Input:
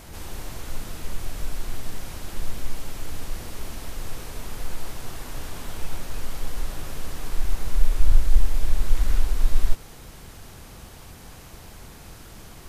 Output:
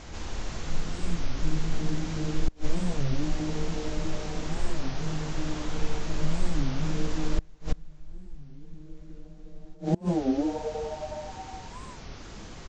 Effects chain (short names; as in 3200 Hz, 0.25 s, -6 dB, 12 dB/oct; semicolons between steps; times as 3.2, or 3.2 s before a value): downsampling 16000 Hz; frequency-shifting echo 0.365 s, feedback 57%, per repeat +150 Hz, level -11.5 dB; non-linear reverb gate 0.1 s flat, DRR 8.5 dB; flipped gate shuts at -12 dBFS, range -28 dB; record warp 33 1/3 rpm, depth 250 cents